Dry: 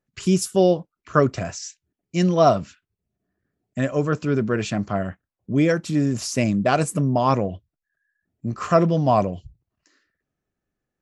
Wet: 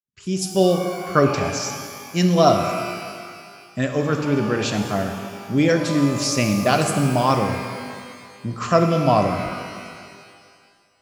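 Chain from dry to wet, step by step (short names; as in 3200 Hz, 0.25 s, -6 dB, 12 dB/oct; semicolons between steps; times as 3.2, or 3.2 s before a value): opening faded in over 0.68 s; dynamic EQ 4300 Hz, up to +7 dB, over -44 dBFS, Q 0.88; shimmer reverb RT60 2 s, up +12 st, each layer -8 dB, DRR 5 dB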